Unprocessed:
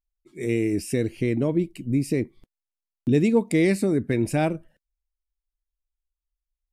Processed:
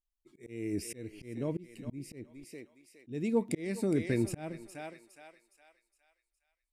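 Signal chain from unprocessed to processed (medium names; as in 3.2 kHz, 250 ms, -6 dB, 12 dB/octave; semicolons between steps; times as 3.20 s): thinning echo 413 ms, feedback 43%, high-pass 680 Hz, level -9.5 dB; slow attack 375 ms; trim -6.5 dB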